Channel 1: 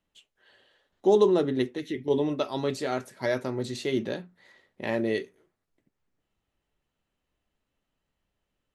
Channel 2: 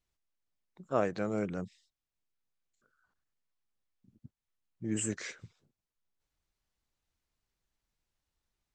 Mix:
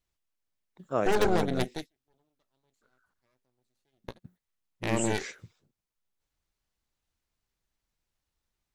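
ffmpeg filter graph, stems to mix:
ffmpeg -i stem1.wav -i stem2.wav -filter_complex "[0:a]aemphasis=mode=production:type=50fm,aeval=exprs='0.376*(cos(1*acos(clip(val(0)/0.376,-1,1)))-cos(1*PI/2))+0.0944*(cos(8*acos(clip(val(0)/0.376,-1,1)))-cos(8*PI/2))':channel_layout=same,volume=-6.5dB[link_01];[1:a]volume=1dB,asplit=2[link_02][link_03];[link_03]apad=whole_len=385738[link_04];[link_01][link_04]sidechaingate=range=-46dB:threshold=-59dB:ratio=16:detection=peak[link_05];[link_05][link_02]amix=inputs=2:normalize=0" out.wav

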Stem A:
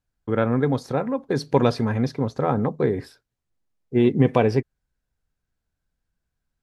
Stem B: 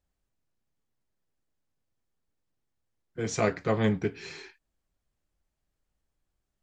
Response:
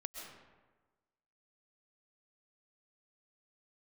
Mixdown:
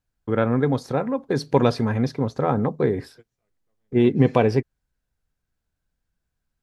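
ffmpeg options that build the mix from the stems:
-filter_complex "[0:a]volume=0.5dB,asplit=2[link_01][link_02];[1:a]volume=-14dB[link_03];[link_02]apad=whole_len=292244[link_04];[link_03][link_04]sidechaingate=range=-41dB:threshold=-50dB:ratio=16:detection=peak[link_05];[link_01][link_05]amix=inputs=2:normalize=0"

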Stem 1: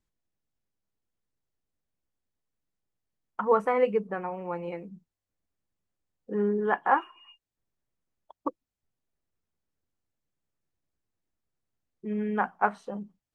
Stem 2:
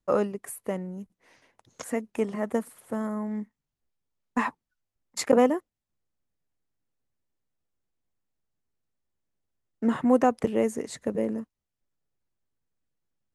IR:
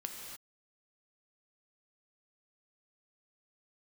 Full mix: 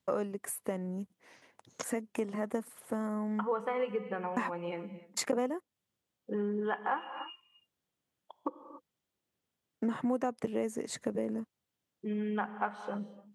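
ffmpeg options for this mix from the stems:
-filter_complex "[0:a]equalizer=frequency=3200:width_type=o:width=0.51:gain=8.5,volume=-3dB,asplit=2[link_01][link_02];[link_02]volume=-6.5dB[link_03];[1:a]volume=1dB[link_04];[2:a]atrim=start_sample=2205[link_05];[link_03][link_05]afir=irnorm=-1:irlink=0[link_06];[link_01][link_04][link_06]amix=inputs=3:normalize=0,highpass=110,acompressor=threshold=-32dB:ratio=3"

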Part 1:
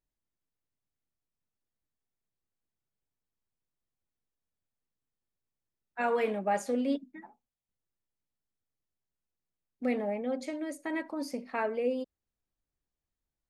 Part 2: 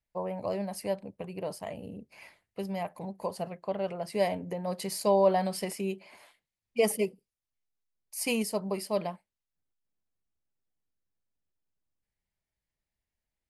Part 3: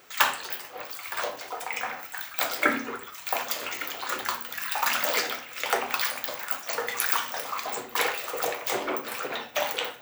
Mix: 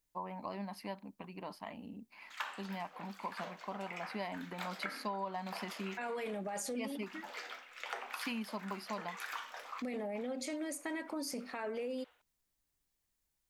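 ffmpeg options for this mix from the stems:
ffmpeg -i stem1.wav -i stem2.wav -i stem3.wav -filter_complex "[0:a]highshelf=frequency=3400:gain=11.5,alimiter=level_in=5dB:limit=-24dB:level=0:latency=1:release=23,volume=-5dB,volume=0.5dB,asplit=2[link_01][link_02];[1:a]equalizer=frequency=125:width_type=o:width=1:gain=-10,equalizer=frequency=250:width_type=o:width=1:gain=12,equalizer=frequency=500:width_type=o:width=1:gain=-11,equalizer=frequency=1000:width_type=o:width=1:gain=12,equalizer=frequency=2000:width_type=o:width=1:gain=4,equalizer=frequency=4000:width_type=o:width=1:gain=8,equalizer=frequency=8000:width_type=o:width=1:gain=-12,volume=-9.5dB[link_03];[2:a]bandpass=frequency=1500:width_type=q:width=0.5:csg=0,adelay=2200,volume=-12dB[link_04];[link_02]apad=whole_len=543161[link_05];[link_04][link_05]sidechaincompress=threshold=-52dB:ratio=5:attack=7.6:release=365[link_06];[link_01][link_03][link_06]amix=inputs=3:normalize=0,acompressor=threshold=-36dB:ratio=6" out.wav

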